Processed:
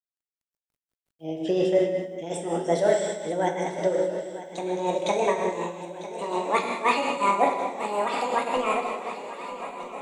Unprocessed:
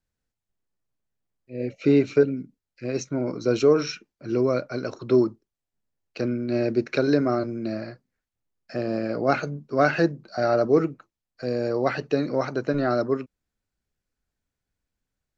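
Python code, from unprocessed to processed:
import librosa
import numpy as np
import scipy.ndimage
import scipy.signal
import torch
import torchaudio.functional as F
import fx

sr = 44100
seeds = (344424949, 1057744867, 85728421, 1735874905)

p1 = fx.speed_glide(x, sr, from_pct=120, to_pct=187)
p2 = fx.rev_gated(p1, sr, seeds[0], gate_ms=470, shape='falling', drr_db=-1.0)
p3 = p2 * (1.0 - 0.52 / 2.0 + 0.52 / 2.0 * np.cos(2.0 * np.pi * 5.5 * (np.arange(len(p2)) / sr)))
p4 = p3 + fx.echo_swing(p3, sr, ms=1264, ratio=3, feedback_pct=70, wet_db=-15.0, dry=0)
p5 = fx.quant_dither(p4, sr, seeds[1], bits=12, dither='none')
y = F.gain(torch.from_numpy(p5), -2.5).numpy()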